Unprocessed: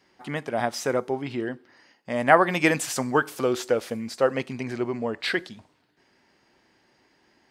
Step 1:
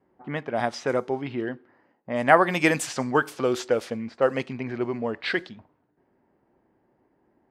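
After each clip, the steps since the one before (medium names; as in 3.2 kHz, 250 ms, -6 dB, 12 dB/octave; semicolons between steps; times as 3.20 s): level-controlled noise filter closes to 790 Hz, open at -20 dBFS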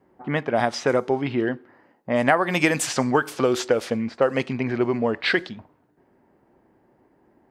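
compression 5:1, threshold -22 dBFS, peak gain reduction 11.5 dB; trim +6.5 dB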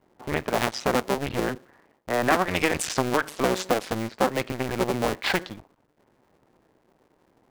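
cycle switcher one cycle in 2, muted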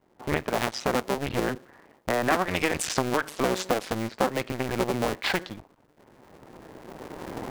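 recorder AGC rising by 15 dB/s; trim -2.5 dB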